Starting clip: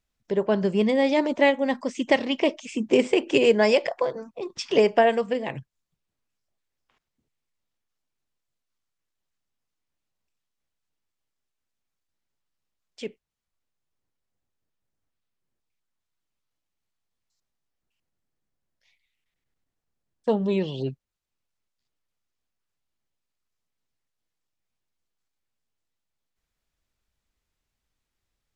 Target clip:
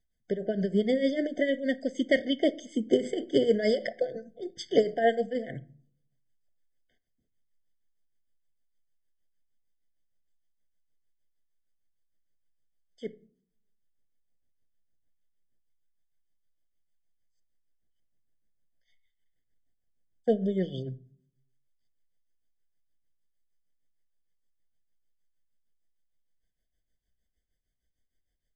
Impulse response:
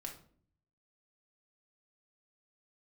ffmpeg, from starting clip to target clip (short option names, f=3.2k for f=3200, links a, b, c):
-filter_complex "[0:a]tremolo=f=6.5:d=0.75,asplit=2[a][b];[1:a]atrim=start_sample=2205,lowshelf=f=170:g=11[c];[b][c]afir=irnorm=-1:irlink=0,volume=-9dB[d];[a][d]amix=inputs=2:normalize=0,afftfilt=real='re*eq(mod(floor(b*sr/1024/740),2),0)':imag='im*eq(mod(floor(b*sr/1024/740),2),0)':win_size=1024:overlap=0.75,volume=-3dB"